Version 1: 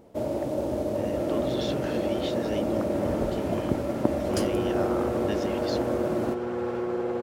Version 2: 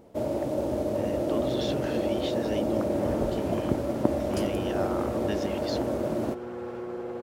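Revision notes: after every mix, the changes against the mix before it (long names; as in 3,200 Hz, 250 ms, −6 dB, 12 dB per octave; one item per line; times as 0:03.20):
second sound −6.5 dB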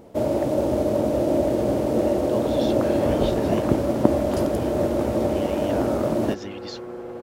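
speech: entry +1.00 s
first sound +6.5 dB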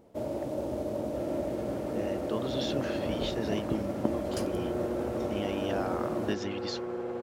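first sound −11.5 dB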